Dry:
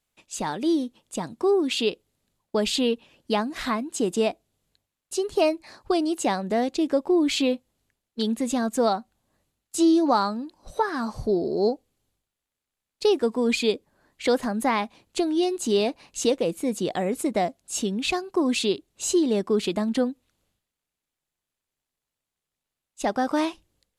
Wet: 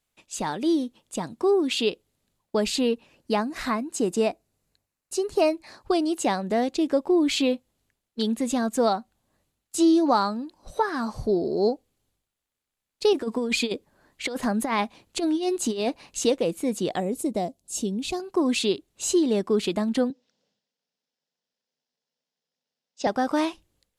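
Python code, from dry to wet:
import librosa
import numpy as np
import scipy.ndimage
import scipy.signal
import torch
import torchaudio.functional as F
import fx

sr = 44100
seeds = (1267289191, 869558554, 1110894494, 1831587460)

y = fx.peak_eq(x, sr, hz=3300.0, db=-8.0, octaves=0.32, at=(2.62, 5.49))
y = fx.over_compress(y, sr, threshold_db=-24.0, ratio=-0.5, at=(13.13, 16.19))
y = fx.peak_eq(y, sr, hz=1700.0, db=-14.0, octaves=1.8, at=(17.0, 18.2))
y = fx.cabinet(y, sr, low_hz=160.0, low_slope=24, high_hz=6100.0, hz=(230.0, 330.0, 490.0, 1200.0, 2300.0, 5300.0), db=(4, -8, 7, -8, -5, 9), at=(20.1, 23.07))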